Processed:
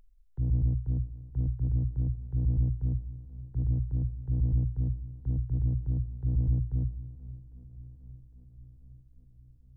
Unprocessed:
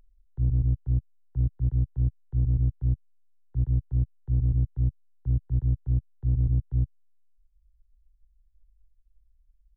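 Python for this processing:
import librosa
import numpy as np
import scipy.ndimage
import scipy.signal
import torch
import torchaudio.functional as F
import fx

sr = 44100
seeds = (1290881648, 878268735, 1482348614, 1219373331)

y = fx.hum_notches(x, sr, base_hz=60, count=2)
y = fx.echo_swing(y, sr, ms=806, ratio=1.5, feedback_pct=57, wet_db=-19.5)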